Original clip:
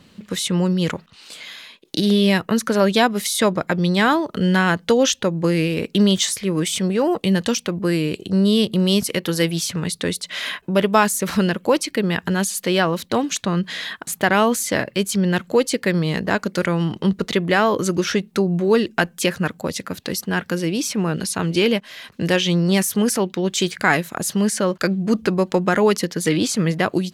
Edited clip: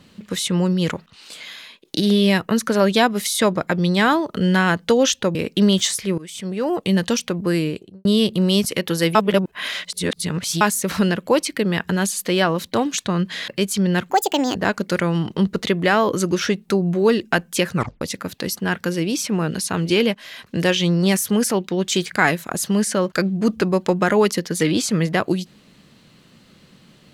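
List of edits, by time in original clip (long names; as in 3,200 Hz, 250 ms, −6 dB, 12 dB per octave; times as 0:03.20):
0:05.35–0:05.73: remove
0:06.56–0:07.29: fade in, from −21 dB
0:07.94–0:08.43: fade out and dull
0:09.53–0:10.99: reverse
0:13.86–0:14.86: remove
0:15.48–0:16.21: play speed 161%
0:19.41: tape stop 0.26 s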